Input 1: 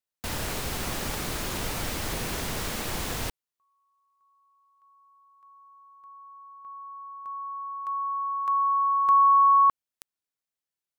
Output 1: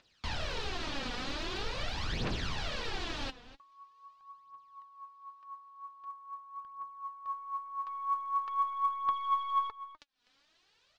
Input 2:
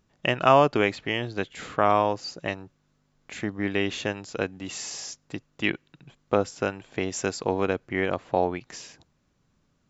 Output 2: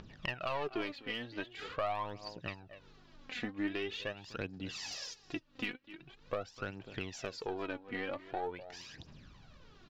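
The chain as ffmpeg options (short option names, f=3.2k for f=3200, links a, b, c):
-filter_complex "[0:a]aeval=exprs='(tanh(4.47*val(0)+0.1)-tanh(0.1))/4.47':c=same,acompressor=mode=upward:threshold=-36dB:ratio=2.5:attack=1.6:release=216:knee=2.83:detection=peak,lowpass=f=4.4k:w=0.5412,lowpass=f=4.4k:w=1.3066,highshelf=f=2.8k:g=8,bandreject=f=2.1k:w=17,asplit=2[a][b];[b]adelay=250.7,volume=-17dB,highshelf=f=4k:g=-5.64[c];[a][c]amix=inputs=2:normalize=0,acompressor=threshold=-25dB:ratio=10:attack=5.7:release=903:knee=1:detection=rms,aphaser=in_gain=1:out_gain=1:delay=4.2:decay=0.64:speed=0.44:type=triangular,volume=-7dB"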